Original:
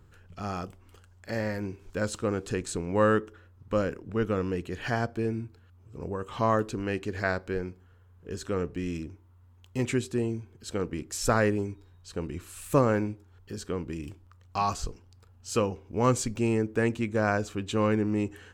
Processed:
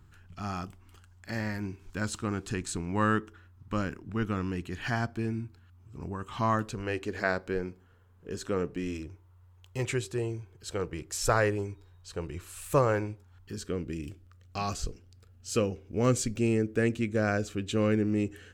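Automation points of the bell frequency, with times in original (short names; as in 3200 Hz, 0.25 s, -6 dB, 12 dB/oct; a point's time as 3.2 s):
bell -13 dB 0.55 oct
6.55 s 500 Hz
7.37 s 68 Hz
8.67 s 68 Hz
9.08 s 240 Hz
13.1 s 240 Hz
13.73 s 940 Hz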